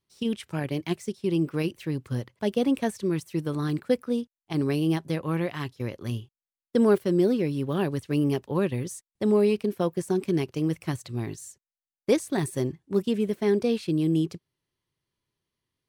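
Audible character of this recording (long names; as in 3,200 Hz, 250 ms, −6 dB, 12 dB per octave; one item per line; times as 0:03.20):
background noise floor −96 dBFS
spectral slope −7.0 dB per octave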